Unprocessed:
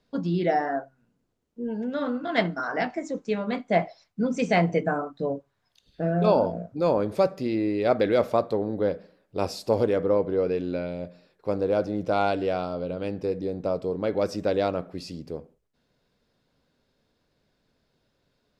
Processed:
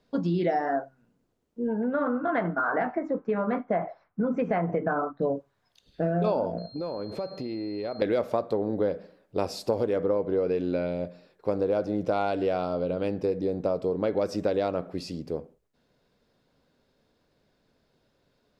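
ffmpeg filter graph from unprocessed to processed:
ffmpeg -i in.wav -filter_complex "[0:a]asettb=1/sr,asplit=3[link_01][link_02][link_03];[link_01]atrim=end=1.674[link_04];[link_02]atrim=start=1.67:end=5.22,asetpts=PTS-STARTPTS,afade=type=in:duration=0.004:curve=qsin,afade=type=out:start_time=3.546:duration=0.004:curve=qsin,lowpass=frequency=1400:width_type=q:width=1.9,acompressor=threshold=-23dB:ratio=2.5:attack=3.2:release=140:knee=1:detection=peak[link_05];[link_03]atrim=start=5.216[link_06];[link_04][link_05]acrossfade=duration=0.004:curve1=hsin:curve2=qsin[link_07];[link_07][link_06]acrossfade=duration=0.004:curve1=qsin:curve2=hsin,asettb=1/sr,asplit=3[link_08][link_09][link_10];[link_08]atrim=end=6.584[link_11];[link_09]atrim=start=6.58:end=8.02,asetpts=PTS-STARTPTS,afade=type=in:duration=0.004:curve=qsin,afade=type=out:start_time=1.436:duration=0.004:curve=qsin,acompressor=threshold=-32dB:ratio=8:attack=3.2:release=140:knee=1:detection=peak,aeval=exprs='val(0)+0.00562*sin(2*PI*4200*n/s)':channel_layout=same,highshelf=frequency=5200:gain=-10.5[link_12];[link_10]atrim=start=8.016[link_13];[link_11][link_12]acrossfade=duration=0.004:curve1=hsin:curve2=qsin[link_14];[link_14][link_13]acrossfade=duration=0.004:curve1=qsin:curve2=hsin,equalizer=frequency=520:width_type=o:width=2.9:gain=3.5,acompressor=threshold=-22dB:ratio=6" out.wav

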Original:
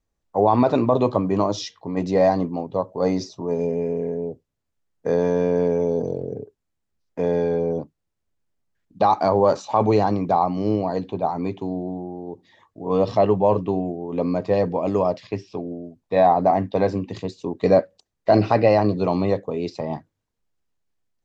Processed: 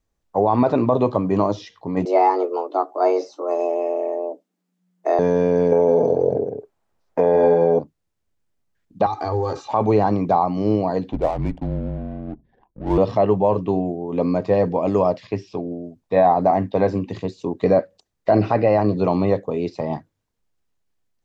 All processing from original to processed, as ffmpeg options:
ffmpeg -i in.wav -filter_complex "[0:a]asettb=1/sr,asplit=3[link_01][link_02][link_03];[link_01]atrim=end=2.054[link_04];[link_02]atrim=start=2.05:end=5.19,asetpts=PTS-STARTPTS,afade=type=in:duration=0.004:curve=qsin,afade=type=out:start_time=3.136:duration=0.004:curve=qsin,asplit=2[link_05][link_06];[link_06]adelay=15,volume=-11dB[link_07];[link_05][link_07]amix=inputs=2:normalize=0,atrim=end_sample=138474,afreqshift=180[link_08];[link_03]atrim=start=5.186[link_09];[link_04][link_08]acrossfade=duration=0.004:curve1=hsin:curve2=qsin[link_10];[link_10][link_09]acrossfade=duration=0.004:curve1=qsin:curve2=hsin,asettb=1/sr,asplit=3[link_11][link_12][link_13];[link_11]atrim=end=5.724[link_14];[link_12]atrim=start=5.72:end=7.79,asetpts=PTS-STARTPTS,afade=type=in:duration=0.004:curve=qsin,afade=type=out:start_time=2.066:duration=0.004:curve=qsin,equalizer=frequency=800:width=0.63:gain=14.5,aecho=1:1:159:0.447,atrim=end_sample=91287[link_15];[link_13]atrim=start=7.786[link_16];[link_14][link_15]acrossfade=duration=0.004:curve1=hsin:curve2=qsin[link_17];[link_17][link_16]acrossfade=duration=0.004:curve1=qsin:curve2=hsin,asettb=1/sr,asplit=3[link_18][link_19][link_20];[link_18]atrim=end=9.064[link_21];[link_19]atrim=start=9.06:end=9.69,asetpts=PTS-STARTPTS,afade=type=in:duration=0.004:curve=qsin,afade=type=out:start_time=0.626:duration=0.004:curve=qsin,bandreject=frequency=720:width=19,aecho=1:1:2.5:0.95,atrim=end_sample=27783,acrossover=split=170|3000[link_22][link_23][link_24];[link_23]acompressor=threshold=-24dB:ratio=5:attack=3.2:release=140:knee=2.83:detection=peak[link_25];[link_22][link_25][link_24]amix=inputs=3:normalize=0[link_26];[link_20]atrim=start=9.686[link_27];[link_21][link_26]acrossfade=duration=0.004:curve1=hsin:curve2=qsin[link_28];[link_28][link_27]acrossfade=duration=0.004:curve1=qsin:curve2=hsin,asettb=1/sr,asplit=3[link_29][link_30][link_31];[link_29]atrim=end=11.124[link_32];[link_30]atrim=start=11.12:end=12.98,asetpts=PTS-STARTPTS,afade=type=in:duration=0.004:curve=qsin,afade=type=out:start_time=1.856:duration=0.004:curve=qsin,afreqshift=-120,adynamicsmooth=sensitivity=7:basefreq=510[link_33];[link_31]atrim=start=12.976[link_34];[link_32][link_33]acrossfade=duration=0.004:curve1=hsin:curve2=qsin[link_35];[link_35][link_34]acrossfade=duration=0.004:curve1=qsin:curve2=hsin,acrossover=split=2600[link_36][link_37];[link_37]acompressor=threshold=-48dB:ratio=4:attack=1:release=60[link_38];[link_36][link_38]amix=inputs=2:normalize=0,alimiter=limit=-9dB:level=0:latency=1:release=216,volume=2.5dB" out.wav

